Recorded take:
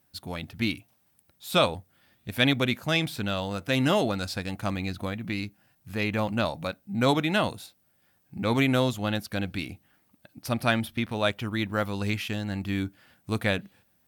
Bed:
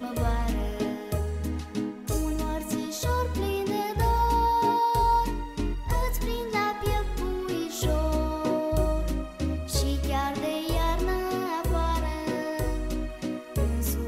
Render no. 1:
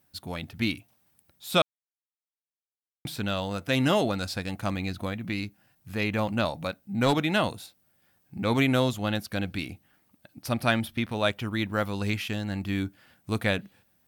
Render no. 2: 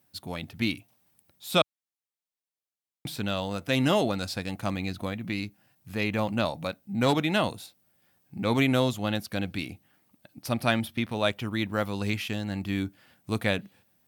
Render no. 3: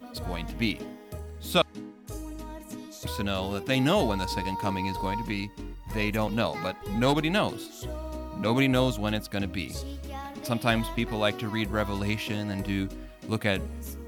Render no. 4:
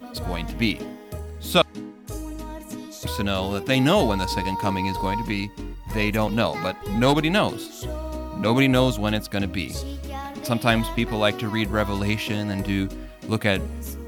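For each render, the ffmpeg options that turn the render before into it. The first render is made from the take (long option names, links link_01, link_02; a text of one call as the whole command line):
ffmpeg -i in.wav -filter_complex "[0:a]asettb=1/sr,asplit=3[link_01][link_02][link_03];[link_01]atrim=end=6.514[link_04];[link_02]atrim=start=6.51:end=7.38,asetpts=PTS-STARTPTS,afade=type=in:duration=0.004:curve=qsin,afade=type=out:start_time=0.866:duration=0.004:curve=qsin,aeval=exprs='clip(val(0),-1,0.106)':channel_layout=same[link_05];[link_03]atrim=start=7.376[link_06];[link_04][link_05]acrossfade=duration=0.004:curve1=hsin:curve2=qsin[link_07];[link_07][link_06]acrossfade=duration=0.004:curve1=qsin:curve2=hsin,asplit=3[link_08][link_09][link_10];[link_08]atrim=end=1.62,asetpts=PTS-STARTPTS,afade=type=out:start_time=1.616:duration=0.004:curve=hsin[link_11];[link_09]atrim=start=1.62:end=3.05,asetpts=PTS-STARTPTS,volume=0[link_12];[link_10]atrim=start=3.05,asetpts=PTS-STARTPTS,afade=type=in:duration=0.004:curve=hsin[link_13];[link_11][link_12][link_13]concat=n=3:v=0:a=1" out.wav
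ffmpeg -i in.wav -af "highpass=82,equalizer=frequency=1500:width=2.6:gain=-2.5" out.wav
ffmpeg -i in.wav -i bed.wav -filter_complex "[1:a]volume=-10.5dB[link_01];[0:a][link_01]amix=inputs=2:normalize=0" out.wav
ffmpeg -i in.wav -af "volume=5dB" out.wav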